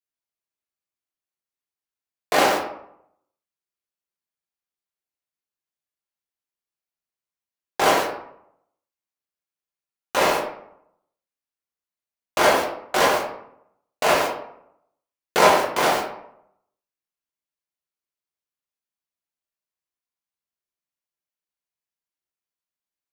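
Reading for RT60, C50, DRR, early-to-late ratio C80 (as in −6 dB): 0.70 s, 5.0 dB, −3.5 dB, 8.0 dB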